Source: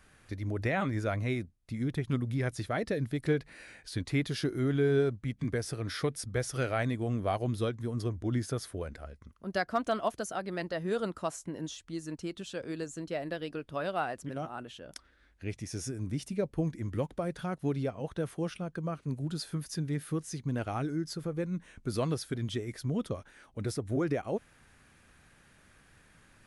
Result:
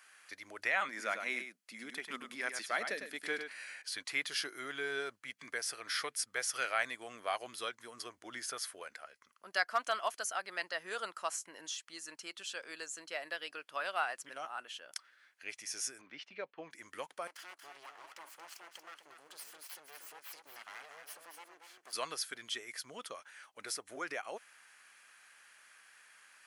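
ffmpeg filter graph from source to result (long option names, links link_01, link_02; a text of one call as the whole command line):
ffmpeg -i in.wav -filter_complex "[0:a]asettb=1/sr,asplit=3[link_01][link_02][link_03];[link_01]atrim=end=0.884[link_04];[link_02]atrim=start=0.88:end=3.82,asetpts=PTS-STARTPTS,afade=type=in:duration=0.004:curve=qsin,afade=type=out:start_time=2.936:duration=0.004:curve=qsin,lowshelf=frequency=140:width_type=q:width=3:gain=-12.5,aecho=1:1:103:0.422,atrim=end_sample=129654[link_05];[link_03]atrim=start=3.816[link_06];[link_04][link_05]acrossfade=duration=0.004:curve1=hsin:curve2=qsin[link_07];[link_07][link_06]acrossfade=duration=0.004:curve1=qsin:curve2=hsin,asettb=1/sr,asplit=3[link_08][link_09][link_10];[link_08]atrim=end=16.014[link_11];[link_09]atrim=start=16.01:end=16.71,asetpts=PTS-STARTPTS,afade=type=in:duration=0.004:curve=qsin,afade=type=out:start_time=0.696:duration=0.004:curve=qsin,agate=range=-7dB:threshold=-48dB:ratio=16:release=100:detection=peak,lowpass=frequency=3700:width=0.5412,lowpass=frequency=3700:width=1.3066,equalizer=frequency=110:width_type=o:width=0.45:gain=-14[link_12];[link_10]atrim=start=16.706[link_13];[link_11][link_12]acrossfade=duration=0.004:curve1=hsin:curve2=qsin[link_14];[link_14][link_13]acrossfade=duration=0.004:curve1=qsin:curve2=hsin,asettb=1/sr,asplit=3[link_15][link_16][link_17];[link_15]atrim=end=17.274[link_18];[link_16]atrim=start=17.27:end=21.93,asetpts=PTS-STARTPTS,afade=type=in:duration=0.004:curve=qsin,afade=type=out:start_time=4.656:duration=0.004:curve=qsin,acompressor=threshold=-44dB:ratio=2.5:attack=3.2:release=140:knee=1:detection=peak,aeval=exprs='abs(val(0))':channel_layout=same,aecho=1:1:232:0.447,atrim=end_sample=205506[link_19];[link_17]atrim=start=21.926[link_20];[link_18][link_19]acrossfade=duration=0.004:curve1=hsin:curve2=qsin[link_21];[link_21][link_20]acrossfade=duration=0.004:curve1=qsin:curve2=hsin,highpass=1200,bandreject=frequency=3700:width=12,volume=4dB" out.wav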